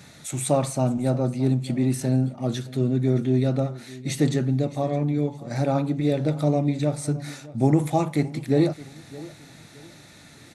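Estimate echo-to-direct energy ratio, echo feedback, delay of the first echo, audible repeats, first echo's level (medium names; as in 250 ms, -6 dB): -18.5 dB, 32%, 617 ms, 2, -19.0 dB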